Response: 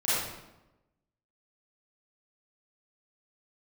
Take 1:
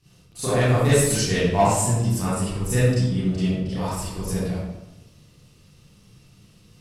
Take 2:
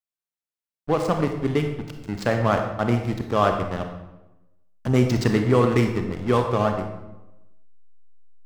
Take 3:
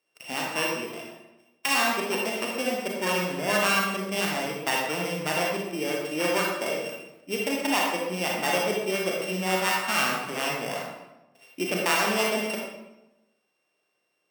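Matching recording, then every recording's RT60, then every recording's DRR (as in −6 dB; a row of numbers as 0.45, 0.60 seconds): 1; 1.0, 1.0, 1.0 seconds; −12.5, 4.5, −2.5 decibels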